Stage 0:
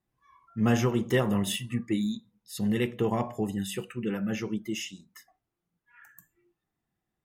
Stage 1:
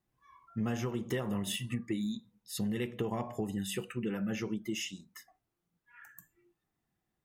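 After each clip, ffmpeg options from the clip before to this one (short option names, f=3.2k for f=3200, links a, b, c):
-af "acompressor=threshold=-31dB:ratio=6"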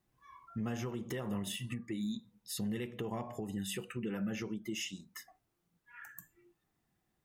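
-af "alimiter=level_in=8.5dB:limit=-24dB:level=0:latency=1:release=406,volume=-8.5dB,volume=3.5dB"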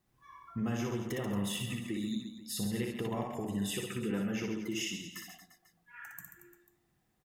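-af "aecho=1:1:60|135|228.8|345.9|492.4:0.631|0.398|0.251|0.158|0.1,volume=1.5dB"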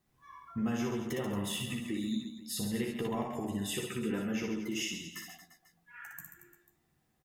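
-filter_complex "[0:a]asplit=2[a][b];[b]adelay=13,volume=-7dB[c];[a][c]amix=inputs=2:normalize=0"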